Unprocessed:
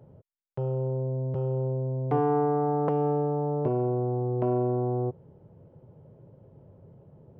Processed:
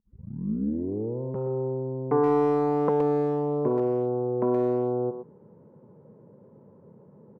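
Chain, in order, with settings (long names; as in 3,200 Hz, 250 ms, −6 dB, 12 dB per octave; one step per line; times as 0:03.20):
turntable start at the beginning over 1.22 s
loudspeaker in its box 190–2,000 Hz, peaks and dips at 210 Hz +10 dB, 460 Hz +4 dB, 690 Hz −8 dB, 1,000 Hz +6 dB
far-end echo of a speakerphone 120 ms, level −8 dB
level +1.5 dB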